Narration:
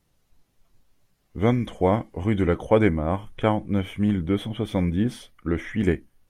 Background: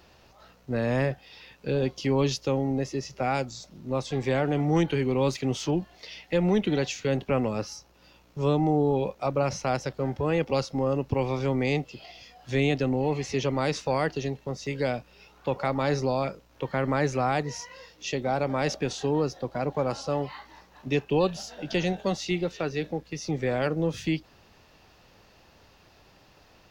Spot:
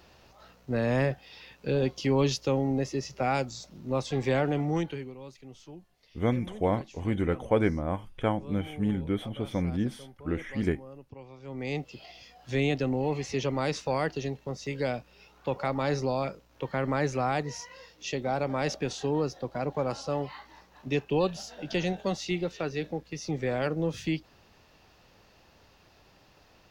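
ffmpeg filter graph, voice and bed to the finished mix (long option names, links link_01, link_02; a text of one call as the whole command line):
ffmpeg -i stem1.wav -i stem2.wav -filter_complex "[0:a]adelay=4800,volume=-6dB[link_01];[1:a]volume=17.5dB,afade=type=out:start_time=4.39:duration=0.76:silence=0.1,afade=type=in:start_time=11.42:duration=0.52:silence=0.125893[link_02];[link_01][link_02]amix=inputs=2:normalize=0" out.wav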